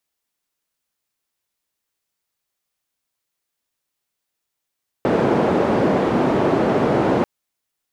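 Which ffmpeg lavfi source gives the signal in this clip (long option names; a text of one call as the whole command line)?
ffmpeg -f lavfi -i "anoisesrc=color=white:duration=2.19:sample_rate=44100:seed=1,highpass=frequency=170,lowpass=frequency=500,volume=5dB" out.wav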